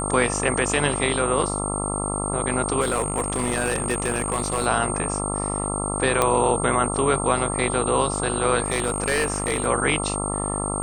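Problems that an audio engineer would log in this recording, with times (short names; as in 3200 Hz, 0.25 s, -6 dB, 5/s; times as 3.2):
buzz 50 Hz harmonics 27 -28 dBFS
tone 8600 Hz -28 dBFS
2.8–4.67 clipped -17.5 dBFS
6.22 pop -5 dBFS
8.64–9.67 clipped -16.5 dBFS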